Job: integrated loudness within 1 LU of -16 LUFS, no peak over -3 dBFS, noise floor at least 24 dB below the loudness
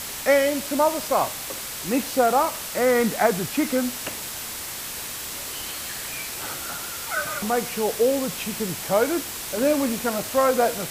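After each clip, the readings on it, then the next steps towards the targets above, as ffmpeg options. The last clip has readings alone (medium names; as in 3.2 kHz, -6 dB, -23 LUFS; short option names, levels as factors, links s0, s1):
steady tone 7.7 kHz; tone level -45 dBFS; noise floor -33 dBFS; noise floor target -48 dBFS; loudness -24.0 LUFS; peak level -6.0 dBFS; loudness target -16.0 LUFS
-> -af "bandreject=f=7700:w=30"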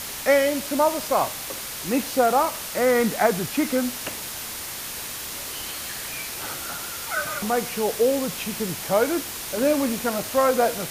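steady tone not found; noise floor -34 dBFS; noise floor target -48 dBFS
-> -af "afftdn=nr=14:nf=-34"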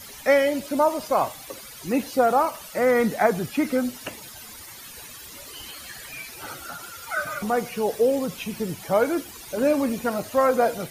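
noise floor -42 dBFS; noise floor target -48 dBFS
-> -af "afftdn=nr=6:nf=-42"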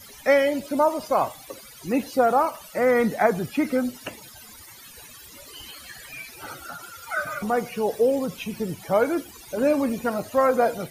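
noise floor -46 dBFS; noise floor target -48 dBFS
-> -af "afftdn=nr=6:nf=-46"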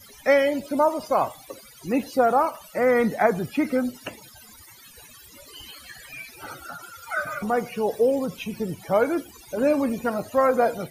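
noise floor -49 dBFS; loudness -23.5 LUFS; peak level -6.0 dBFS; loudness target -16.0 LUFS
-> -af "volume=2.37,alimiter=limit=0.708:level=0:latency=1"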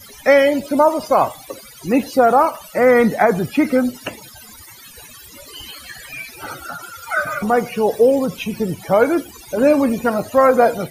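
loudness -16.5 LUFS; peak level -3.0 dBFS; noise floor -41 dBFS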